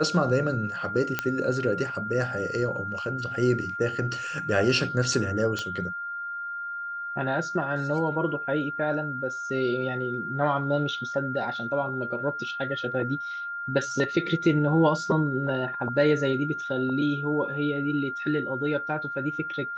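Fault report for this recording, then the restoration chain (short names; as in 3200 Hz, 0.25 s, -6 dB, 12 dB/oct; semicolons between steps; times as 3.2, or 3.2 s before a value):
tone 1400 Hz -31 dBFS
1.19 pop -10 dBFS
5.59 pop -17 dBFS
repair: de-click; notch 1400 Hz, Q 30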